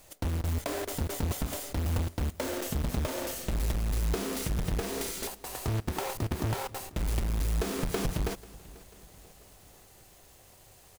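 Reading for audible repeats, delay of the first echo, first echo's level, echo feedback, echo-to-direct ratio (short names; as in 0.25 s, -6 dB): 3, 0.49 s, -21.5 dB, 55%, -20.0 dB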